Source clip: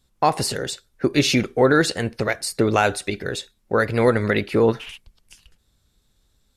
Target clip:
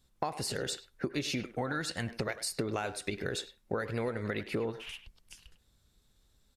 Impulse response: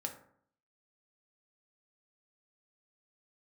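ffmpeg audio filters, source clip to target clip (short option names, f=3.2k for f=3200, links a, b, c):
-filter_complex "[0:a]asettb=1/sr,asplit=3[a][b][c];[a]atrim=end=1.454[d];[b]atrim=start=1.45:end=2.09,asetpts=PTS-STARTPTS,afade=t=in:d=0.004:c=qsin,afade=t=out:st=0.636:d=0.004:c=qsin,equalizer=f=420:t=o:w=0.6:g=-12.5[e];[c]atrim=start=2.086[f];[d][e]acrossfade=d=0.004:c1=hsin:c2=qsin[g];[g][f]acrossfade=d=0.004:c1=qsin:c2=hsin,acompressor=threshold=-26dB:ratio=16,asplit=2[h][i];[i]adelay=100,highpass=300,lowpass=3.4k,asoftclip=type=hard:threshold=-24.5dB,volume=-12dB[j];[h][j]amix=inputs=2:normalize=0,volume=-4dB"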